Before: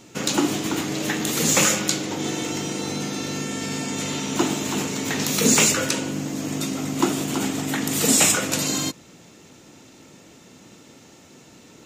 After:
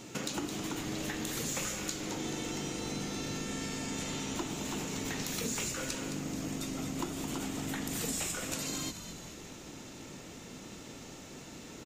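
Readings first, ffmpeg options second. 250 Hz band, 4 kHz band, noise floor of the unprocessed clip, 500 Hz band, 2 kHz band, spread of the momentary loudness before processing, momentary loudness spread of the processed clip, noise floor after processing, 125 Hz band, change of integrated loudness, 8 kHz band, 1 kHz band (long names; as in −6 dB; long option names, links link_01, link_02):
−12.5 dB, −13.5 dB, −49 dBFS, −13.0 dB, −13.5 dB, 11 LU, 13 LU, −48 dBFS, −10.5 dB, −14.5 dB, −15.0 dB, −13.0 dB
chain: -filter_complex "[0:a]acompressor=threshold=-36dB:ratio=5,asplit=7[link_01][link_02][link_03][link_04][link_05][link_06][link_07];[link_02]adelay=216,afreqshift=-94,volume=-9dB[link_08];[link_03]adelay=432,afreqshift=-188,volume=-14.7dB[link_09];[link_04]adelay=648,afreqshift=-282,volume=-20.4dB[link_10];[link_05]adelay=864,afreqshift=-376,volume=-26dB[link_11];[link_06]adelay=1080,afreqshift=-470,volume=-31.7dB[link_12];[link_07]adelay=1296,afreqshift=-564,volume=-37.4dB[link_13];[link_01][link_08][link_09][link_10][link_11][link_12][link_13]amix=inputs=7:normalize=0"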